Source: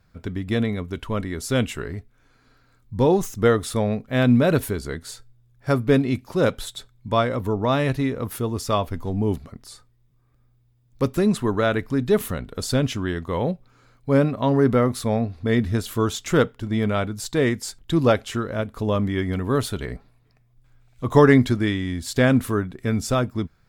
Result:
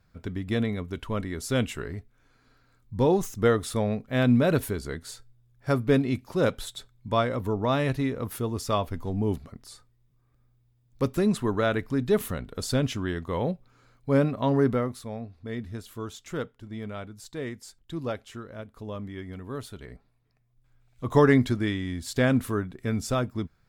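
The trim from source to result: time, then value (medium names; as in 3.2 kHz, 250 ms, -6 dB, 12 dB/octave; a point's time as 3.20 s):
14.62 s -4 dB
15.06 s -14 dB
19.70 s -14 dB
21.13 s -5 dB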